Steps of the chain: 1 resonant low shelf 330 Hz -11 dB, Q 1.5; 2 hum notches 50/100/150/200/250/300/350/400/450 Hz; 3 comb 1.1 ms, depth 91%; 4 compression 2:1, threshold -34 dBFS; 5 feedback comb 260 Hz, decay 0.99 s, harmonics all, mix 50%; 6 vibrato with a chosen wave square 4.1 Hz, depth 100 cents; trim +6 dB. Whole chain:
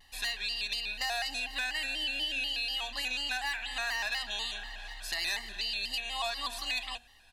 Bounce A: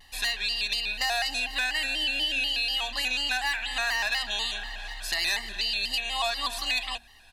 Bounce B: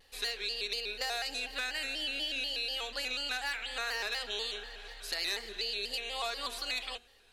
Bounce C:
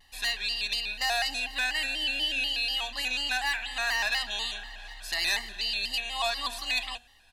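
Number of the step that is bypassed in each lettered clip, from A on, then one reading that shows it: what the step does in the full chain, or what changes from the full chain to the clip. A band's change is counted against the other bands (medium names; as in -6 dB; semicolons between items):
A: 5, loudness change +6.0 LU; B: 3, 500 Hz band +6.0 dB; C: 4, mean gain reduction 3.0 dB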